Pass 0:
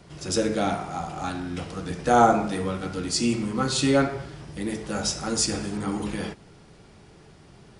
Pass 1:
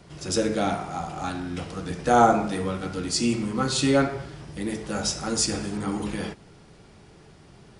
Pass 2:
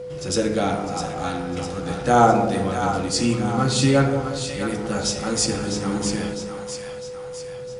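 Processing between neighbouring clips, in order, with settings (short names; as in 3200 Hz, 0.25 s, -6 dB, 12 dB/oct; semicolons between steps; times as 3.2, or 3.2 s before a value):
nothing audible
bell 130 Hz +7 dB 0.4 oct; whine 500 Hz -33 dBFS; split-band echo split 690 Hz, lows 0.182 s, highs 0.655 s, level -7 dB; gain +2 dB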